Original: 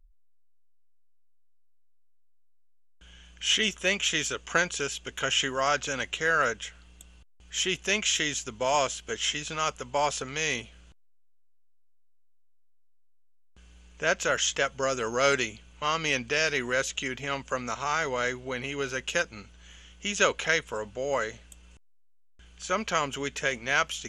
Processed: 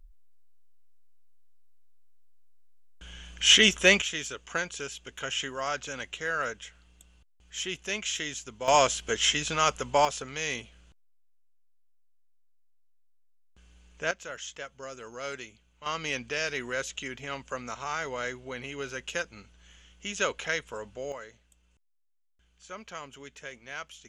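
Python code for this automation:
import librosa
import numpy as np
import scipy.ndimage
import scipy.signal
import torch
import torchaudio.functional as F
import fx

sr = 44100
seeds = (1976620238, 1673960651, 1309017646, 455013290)

y = fx.gain(x, sr, db=fx.steps((0.0, 6.5), (4.02, -6.0), (8.68, 4.0), (10.05, -3.5), (14.11, -13.5), (15.86, -5.0), (21.12, -14.0)))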